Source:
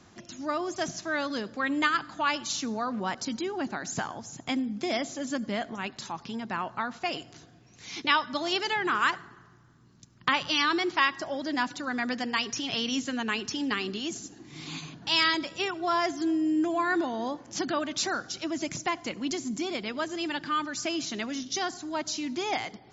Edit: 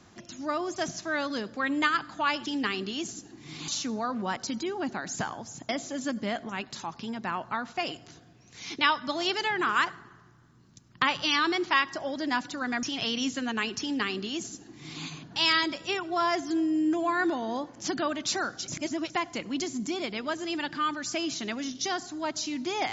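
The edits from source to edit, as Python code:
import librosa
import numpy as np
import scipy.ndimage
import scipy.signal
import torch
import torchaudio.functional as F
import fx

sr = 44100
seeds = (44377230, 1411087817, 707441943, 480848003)

y = fx.edit(x, sr, fx.cut(start_s=4.47, length_s=0.48),
    fx.cut(start_s=12.09, length_s=0.45),
    fx.duplicate(start_s=13.53, length_s=1.22, to_s=2.46),
    fx.reverse_span(start_s=18.39, length_s=0.42), tone=tone)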